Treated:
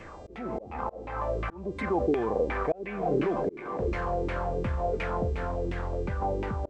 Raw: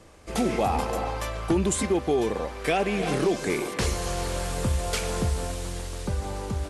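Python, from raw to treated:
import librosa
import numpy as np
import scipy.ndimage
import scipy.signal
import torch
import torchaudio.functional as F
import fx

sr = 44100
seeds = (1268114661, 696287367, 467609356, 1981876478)

p1 = fx.over_compress(x, sr, threshold_db=-36.0, ratio=-1.0)
p2 = x + (p1 * librosa.db_to_amplitude(1.0))
p3 = fx.filter_lfo_lowpass(p2, sr, shape='saw_down', hz=2.8, low_hz=300.0, high_hz=2400.0, q=3.4)
p4 = fx.dmg_buzz(p3, sr, base_hz=400.0, harmonics=20, level_db=-56.0, tilt_db=-3, odd_only=False)
p5 = fx.auto_swell(p4, sr, attack_ms=396.0)
y = p5 * librosa.db_to_amplitude(-6.5)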